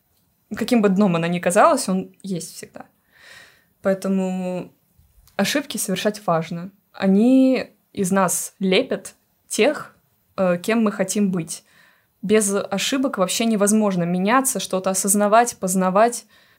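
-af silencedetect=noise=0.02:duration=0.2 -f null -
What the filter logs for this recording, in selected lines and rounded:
silence_start: 0.00
silence_end: 0.51 | silence_duration: 0.51
silence_start: 2.81
silence_end: 3.29 | silence_duration: 0.47
silence_start: 3.40
silence_end: 3.84 | silence_duration: 0.44
silence_start: 4.66
silence_end: 5.27 | silence_duration: 0.62
silence_start: 6.68
silence_end: 6.95 | silence_duration: 0.27
silence_start: 7.66
silence_end: 7.95 | silence_duration: 0.29
silence_start: 9.10
silence_end: 9.49 | silence_duration: 0.40
silence_start: 9.87
silence_end: 10.38 | silence_duration: 0.51
silence_start: 11.58
silence_end: 12.23 | silence_duration: 0.65
silence_start: 16.20
silence_end: 16.58 | silence_duration: 0.38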